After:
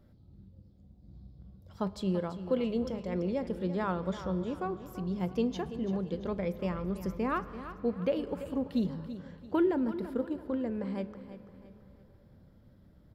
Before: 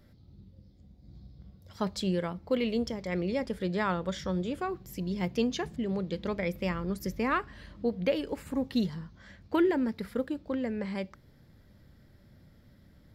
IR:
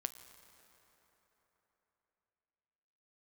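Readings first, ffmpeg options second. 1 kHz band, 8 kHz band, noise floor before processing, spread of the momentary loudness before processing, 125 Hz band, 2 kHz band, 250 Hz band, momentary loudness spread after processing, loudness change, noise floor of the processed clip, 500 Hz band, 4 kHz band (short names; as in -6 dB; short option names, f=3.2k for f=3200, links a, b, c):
-2.5 dB, n/a, -59 dBFS, 7 LU, -1.0 dB, -7.5 dB, -1.0 dB, 11 LU, -1.5 dB, -60 dBFS, -1.0 dB, -8.5 dB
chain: -filter_complex "[0:a]equalizer=f=2k:t=o:w=0.68:g=-8.5,aecho=1:1:336|672|1008|1344:0.237|0.0925|0.0361|0.0141,asplit=2[a][b];[1:a]atrim=start_sample=2205,lowpass=3.1k[c];[b][c]afir=irnorm=-1:irlink=0,volume=3.5dB[d];[a][d]amix=inputs=2:normalize=0,volume=-8.5dB"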